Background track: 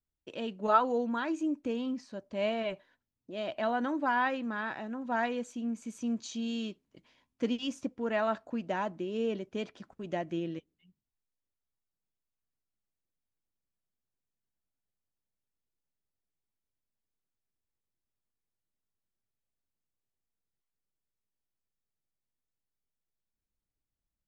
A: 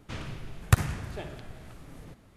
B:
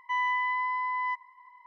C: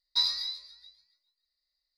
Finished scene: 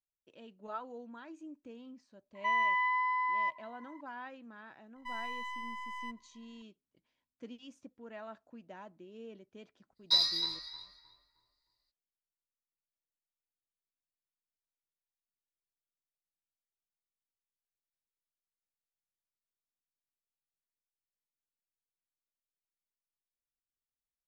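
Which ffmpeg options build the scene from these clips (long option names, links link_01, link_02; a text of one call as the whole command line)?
ffmpeg -i bed.wav -i cue0.wav -i cue1.wav -i cue2.wav -filter_complex "[2:a]asplit=2[link_01][link_02];[0:a]volume=-16.5dB[link_03];[link_02]aeval=exprs='if(lt(val(0),0),0.251*val(0),val(0))':channel_layout=same[link_04];[3:a]asplit=2[link_05][link_06];[link_06]adelay=311,lowpass=frequency=1400:poles=1,volume=-4dB,asplit=2[link_07][link_08];[link_08]adelay=311,lowpass=frequency=1400:poles=1,volume=0.4,asplit=2[link_09][link_10];[link_10]adelay=311,lowpass=frequency=1400:poles=1,volume=0.4,asplit=2[link_11][link_12];[link_12]adelay=311,lowpass=frequency=1400:poles=1,volume=0.4,asplit=2[link_13][link_14];[link_14]adelay=311,lowpass=frequency=1400:poles=1,volume=0.4[link_15];[link_05][link_07][link_09][link_11][link_13][link_15]amix=inputs=6:normalize=0[link_16];[link_01]atrim=end=1.66,asetpts=PTS-STARTPTS,volume=-1.5dB,afade=type=in:duration=0.004:curve=hsin,afade=type=out:start_time=1.656:duration=0.004:curve=hsin,adelay=2350[link_17];[link_04]atrim=end=1.66,asetpts=PTS-STARTPTS,volume=-10dB,afade=type=in:duration=0.004:curve=hsin,afade=type=out:start_time=1.656:duration=0.004:curve=hsin,adelay=4960[link_18];[link_16]atrim=end=1.97,asetpts=PTS-STARTPTS,afade=type=in:duration=0.02,afade=type=out:start_time=1.95:duration=0.02,adelay=9950[link_19];[link_03][link_17][link_18][link_19]amix=inputs=4:normalize=0" out.wav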